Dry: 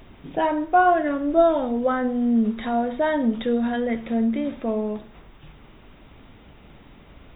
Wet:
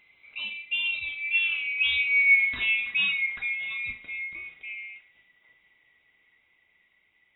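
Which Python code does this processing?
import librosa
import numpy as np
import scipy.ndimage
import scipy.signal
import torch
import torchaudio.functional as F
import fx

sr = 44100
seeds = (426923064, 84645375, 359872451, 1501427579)

y = fx.band_swap(x, sr, width_hz=2000)
y = fx.doppler_pass(y, sr, speed_mps=9, closest_m=4.0, pass_at_s=2.37)
y = fx.room_flutter(y, sr, wall_m=6.4, rt60_s=0.22)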